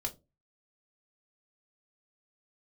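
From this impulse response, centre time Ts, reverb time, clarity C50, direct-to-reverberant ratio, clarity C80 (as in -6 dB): 8 ms, 0.25 s, 18.0 dB, 0.5 dB, 25.0 dB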